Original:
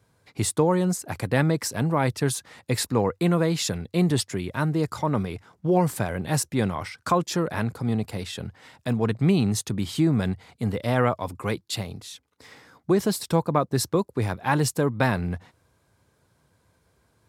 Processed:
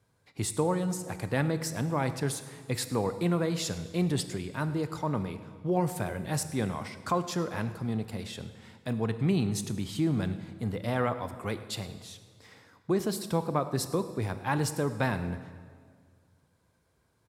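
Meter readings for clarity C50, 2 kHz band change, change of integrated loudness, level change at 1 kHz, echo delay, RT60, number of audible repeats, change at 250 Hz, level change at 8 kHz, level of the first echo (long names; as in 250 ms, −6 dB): 11.5 dB, −6.0 dB, −6.0 dB, −6.0 dB, 106 ms, 1.9 s, 1, −6.0 dB, −6.0 dB, −19.5 dB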